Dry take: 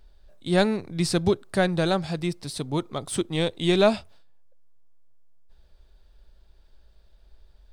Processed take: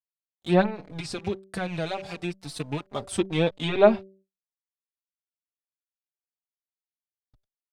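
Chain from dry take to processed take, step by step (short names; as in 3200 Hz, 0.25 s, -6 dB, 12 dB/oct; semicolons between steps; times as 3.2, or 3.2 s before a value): rattling part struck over -28 dBFS, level -24 dBFS; crossover distortion -42.5 dBFS; 0.65–2.86 compressor 3:1, threshold -29 dBFS, peak gain reduction 9.5 dB; treble ducked by the level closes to 2100 Hz, closed at -18 dBFS; bell 750 Hz +3.5 dB 0.98 oct; de-hum 192.9 Hz, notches 3; gate with hold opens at -53 dBFS; endless flanger 4.3 ms -1.1 Hz; gain +2.5 dB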